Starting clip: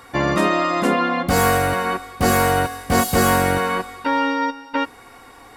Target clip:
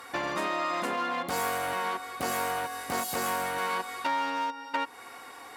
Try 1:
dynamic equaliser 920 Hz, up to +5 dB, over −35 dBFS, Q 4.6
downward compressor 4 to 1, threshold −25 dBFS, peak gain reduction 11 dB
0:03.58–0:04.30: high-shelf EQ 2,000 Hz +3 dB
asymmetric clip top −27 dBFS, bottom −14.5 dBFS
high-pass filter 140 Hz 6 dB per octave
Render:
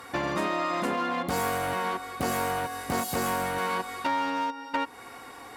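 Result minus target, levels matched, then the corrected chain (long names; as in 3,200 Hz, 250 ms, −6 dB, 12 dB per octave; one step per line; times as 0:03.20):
125 Hz band +7.5 dB
dynamic equaliser 920 Hz, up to +5 dB, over −35 dBFS, Q 4.6
downward compressor 4 to 1, threshold −25 dBFS, peak gain reduction 11 dB
0:03.58–0:04.30: high-shelf EQ 2,000 Hz +3 dB
asymmetric clip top −27 dBFS, bottom −14.5 dBFS
high-pass filter 550 Hz 6 dB per octave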